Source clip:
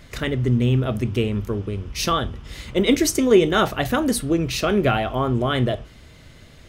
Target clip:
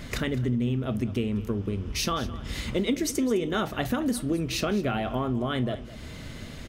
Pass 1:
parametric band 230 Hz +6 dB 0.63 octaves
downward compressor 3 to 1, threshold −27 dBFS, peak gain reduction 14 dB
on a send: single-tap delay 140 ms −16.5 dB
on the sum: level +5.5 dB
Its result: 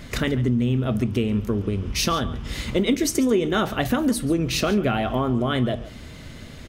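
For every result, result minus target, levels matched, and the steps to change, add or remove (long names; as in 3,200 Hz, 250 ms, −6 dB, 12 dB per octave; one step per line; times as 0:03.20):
echo 69 ms early; downward compressor: peak gain reduction −5.5 dB
change: single-tap delay 209 ms −16.5 dB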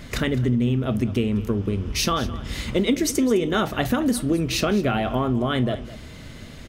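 downward compressor: peak gain reduction −5.5 dB
change: downward compressor 3 to 1, threshold −35 dBFS, peak gain reduction 19.5 dB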